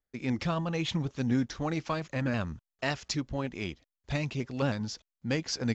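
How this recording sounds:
background noise floor −90 dBFS
spectral slope −5.0 dB per octave

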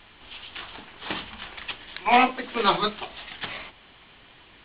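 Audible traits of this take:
background noise floor −53 dBFS
spectral slope −1.0 dB per octave

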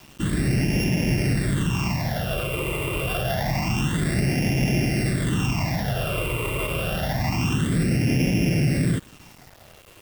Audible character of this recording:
a buzz of ramps at a fixed pitch in blocks of 16 samples
phaser sweep stages 8, 0.27 Hz, lowest notch 220–1,200 Hz
a quantiser's noise floor 8 bits, dither none

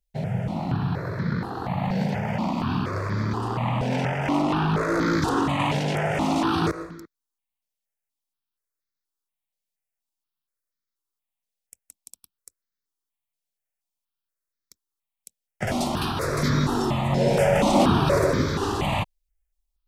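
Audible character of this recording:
notches that jump at a steady rate 4.2 Hz 320–2,800 Hz

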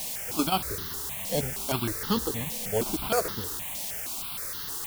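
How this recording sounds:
aliases and images of a low sample rate 3,800 Hz, jitter 0%
chopped level 7.7 Hz, depth 60%, duty 80%
a quantiser's noise floor 6 bits, dither triangular
notches that jump at a steady rate 6.4 Hz 370–2,400 Hz

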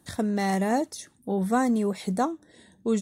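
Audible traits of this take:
background noise floor −62 dBFS
spectral slope −6.0 dB per octave

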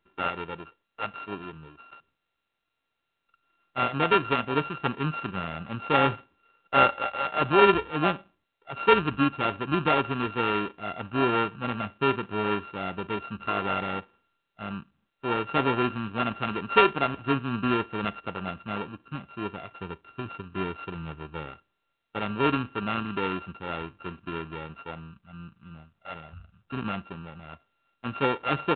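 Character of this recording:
a buzz of ramps at a fixed pitch in blocks of 32 samples
mu-law

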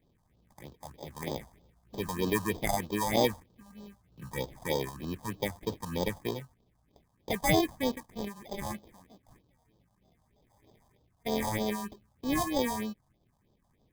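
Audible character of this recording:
aliases and images of a low sample rate 1,400 Hz, jitter 0%
phaser sweep stages 4, 3.2 Hz, lowest notch 360–2,100 Hz

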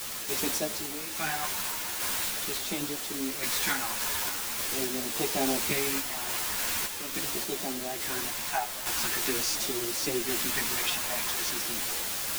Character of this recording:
phaser sweep stages 2, 0.43 Hz, lowest notch 340–1,400 Hz
a quantiser's noise floor 6 bits, dither triangular
sample-and-hold tremolo
a shimmering, thickened sound

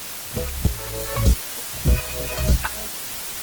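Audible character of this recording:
tremolo saw up 1.5 Hz, depth 80%
phaser sweep stages 2, 3.3 Hz, lowest notch 200–2,000 Hz
a quantiser's noise floor 6 bits, dither triangular
Opus

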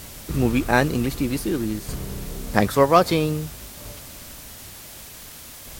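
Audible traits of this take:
tremolo saw down 0.53 Hz, depth 65%
a quantiser's noise floor 8 bits, dither triangular
Ogg Vorbis

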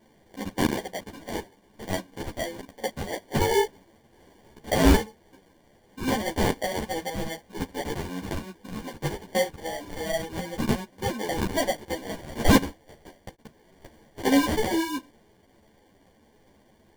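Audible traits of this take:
phaser sweep stages 2, 2.6 Hz, lowest notch 610–1,900 Hz
aliases and images of a low sample rate 1,300 Hz, jitter 0%
a shimmering, thickened sound

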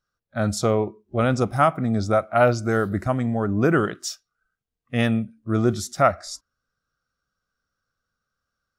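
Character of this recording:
background noise floor −83 dBFS
spectral slope −6.0 dB per octave

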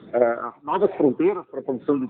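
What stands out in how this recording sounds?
tremolo triangle 1.2 Hz, depth 95%
a quantiser's noise floor 12 bits, dither none
phaser sweep stages 12, 1.3 Hz, lowest notch 520–1,100 Hz
AMR narrowband

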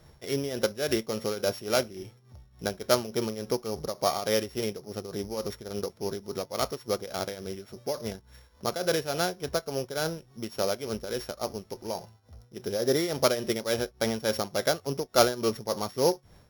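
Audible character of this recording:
a buzz of ramps at a fixed pitch in blocks of 8 samples
tremolo triangle 3.5 Hz, depth 75%

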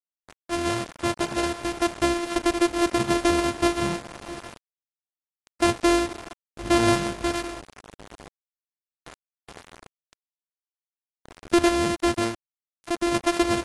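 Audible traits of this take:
a buzz of ramps at a fixed pitch in blocks of 128 samples
sample-and-hold tremolo
a quantiser's noise floor 6 bits, dither none
AAC

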